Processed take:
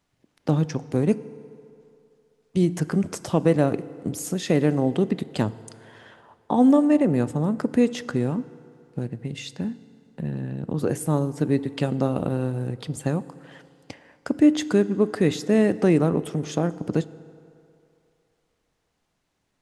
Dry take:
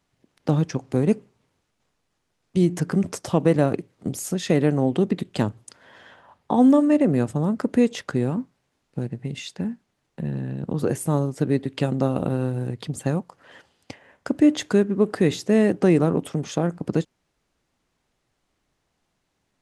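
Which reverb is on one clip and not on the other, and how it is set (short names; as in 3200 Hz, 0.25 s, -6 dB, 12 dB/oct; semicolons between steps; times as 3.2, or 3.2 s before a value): FDN reverb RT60 2.7 s, low-frequency decay 0.75×, high-frequency decay 0.6×, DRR 16 dB; gain -1 dB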